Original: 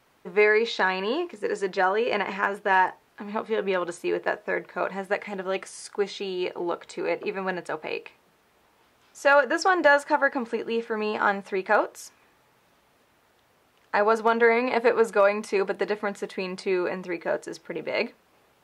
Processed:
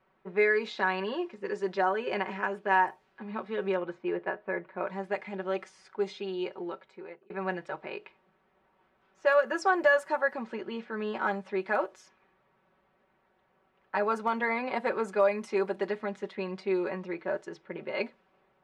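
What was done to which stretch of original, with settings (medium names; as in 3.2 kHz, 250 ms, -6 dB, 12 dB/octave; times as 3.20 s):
3.76–4.87 s: low-pass 2.4 kHz
6.03–7.30 s: fade out equal-power
whole clip: comb 5.3 ms, depth 74%; level-controlled noise filter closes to 2 kHz, open at -15.5 dBFS; dynamic bell 4.8 kHz, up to -4 dB, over -38 dBFS, Q 0.73; trim -7.5 dB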